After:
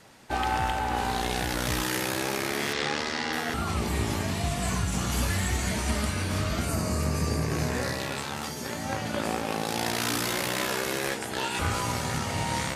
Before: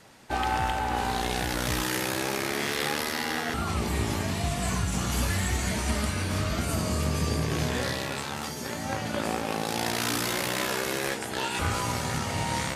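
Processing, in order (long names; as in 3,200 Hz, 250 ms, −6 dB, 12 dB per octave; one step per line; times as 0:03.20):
0:02.73–0:03.33: low-pass filter 7,100 Hz 24 dB per octave
0:06.69–0:08.00: parametric band 3,300 Hz −11 dB 0.33 octaves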